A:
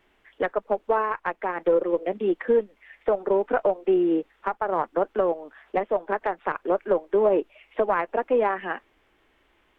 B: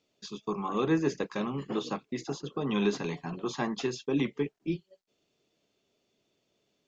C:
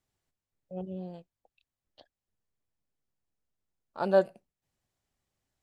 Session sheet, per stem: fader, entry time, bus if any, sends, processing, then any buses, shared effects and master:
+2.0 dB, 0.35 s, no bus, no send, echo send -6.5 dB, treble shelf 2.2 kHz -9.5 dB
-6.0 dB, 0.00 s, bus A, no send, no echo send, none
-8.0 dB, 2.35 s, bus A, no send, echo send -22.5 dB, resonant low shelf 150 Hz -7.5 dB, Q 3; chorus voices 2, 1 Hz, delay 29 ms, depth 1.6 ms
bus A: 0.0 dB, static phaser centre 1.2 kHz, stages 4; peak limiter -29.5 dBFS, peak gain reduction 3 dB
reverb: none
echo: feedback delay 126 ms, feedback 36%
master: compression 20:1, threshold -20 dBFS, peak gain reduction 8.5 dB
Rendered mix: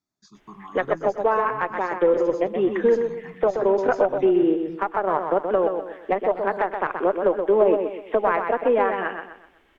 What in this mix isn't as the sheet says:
stem A: missing treble shelf 2.2 kHz -9.5 dB; master: missing compression 20:1, threshold -20 dBFS, peak gain reduction 8.5 dB

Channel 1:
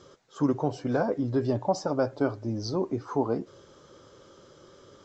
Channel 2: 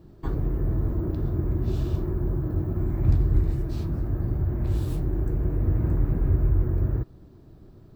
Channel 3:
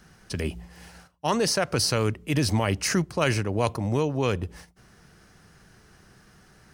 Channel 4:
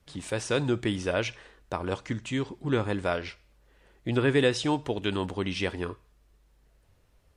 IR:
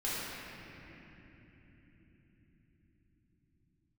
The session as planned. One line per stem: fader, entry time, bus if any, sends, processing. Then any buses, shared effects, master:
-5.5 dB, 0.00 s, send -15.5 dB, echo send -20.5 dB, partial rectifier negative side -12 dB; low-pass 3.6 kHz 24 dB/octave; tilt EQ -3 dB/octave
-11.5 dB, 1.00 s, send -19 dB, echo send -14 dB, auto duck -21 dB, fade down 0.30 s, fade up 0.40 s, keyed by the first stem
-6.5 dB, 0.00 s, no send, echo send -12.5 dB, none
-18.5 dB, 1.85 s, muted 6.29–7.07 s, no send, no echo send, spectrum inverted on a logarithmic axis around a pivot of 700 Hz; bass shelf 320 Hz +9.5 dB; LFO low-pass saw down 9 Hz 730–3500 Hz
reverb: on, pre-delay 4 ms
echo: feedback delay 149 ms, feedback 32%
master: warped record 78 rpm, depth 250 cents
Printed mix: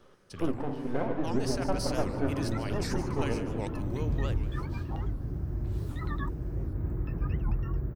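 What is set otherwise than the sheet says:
stem 1: missing tilt EQ -3 dB/octave; stem 3 -6.5 dB -> -13.5 dB; reverb return +8.0 dB

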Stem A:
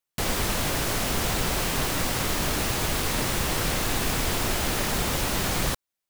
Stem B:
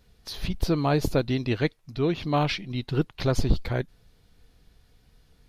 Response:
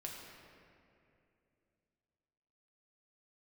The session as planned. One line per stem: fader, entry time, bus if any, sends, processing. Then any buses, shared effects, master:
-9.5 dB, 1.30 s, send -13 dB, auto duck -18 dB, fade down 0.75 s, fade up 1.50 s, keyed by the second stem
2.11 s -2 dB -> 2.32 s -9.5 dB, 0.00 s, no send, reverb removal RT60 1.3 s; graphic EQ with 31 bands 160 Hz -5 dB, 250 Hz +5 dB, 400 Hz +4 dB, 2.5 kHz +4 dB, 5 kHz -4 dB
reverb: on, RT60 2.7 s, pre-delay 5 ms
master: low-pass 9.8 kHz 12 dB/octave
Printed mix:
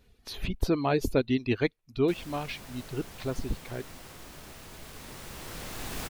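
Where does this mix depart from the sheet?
stem A: entry 1.30 s -> 1.90 s; master: missing low-pass 9.8 kHz 12 dB/octave

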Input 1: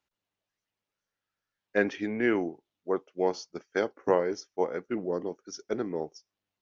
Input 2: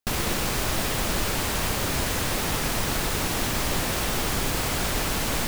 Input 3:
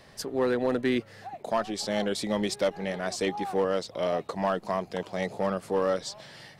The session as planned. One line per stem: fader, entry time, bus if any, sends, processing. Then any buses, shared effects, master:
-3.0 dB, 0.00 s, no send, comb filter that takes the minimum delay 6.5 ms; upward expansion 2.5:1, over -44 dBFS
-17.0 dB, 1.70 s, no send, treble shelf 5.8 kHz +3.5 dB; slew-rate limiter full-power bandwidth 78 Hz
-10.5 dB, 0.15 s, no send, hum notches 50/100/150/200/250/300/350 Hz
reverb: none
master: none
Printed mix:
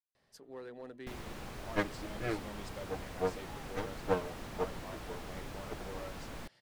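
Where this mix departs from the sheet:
stem 2: entry 1.70 s -> 1.00 s; stem 3 -10.5 dB -> -20.5 dB

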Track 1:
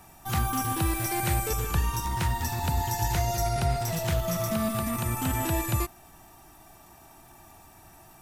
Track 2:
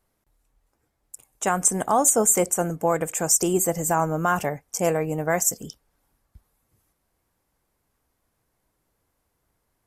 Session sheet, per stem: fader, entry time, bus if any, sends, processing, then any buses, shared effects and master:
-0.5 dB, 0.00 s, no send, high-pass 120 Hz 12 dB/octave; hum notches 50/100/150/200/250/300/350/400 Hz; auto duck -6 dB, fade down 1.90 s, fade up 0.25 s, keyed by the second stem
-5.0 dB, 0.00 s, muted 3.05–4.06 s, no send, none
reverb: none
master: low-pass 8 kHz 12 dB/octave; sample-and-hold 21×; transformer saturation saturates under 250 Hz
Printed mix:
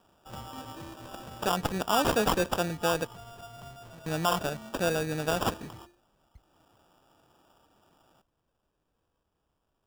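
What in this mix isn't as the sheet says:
stem 1 -0.5 dB -> -11.5 dB; master: missing low-pass 8 kHz 12 dB/octave

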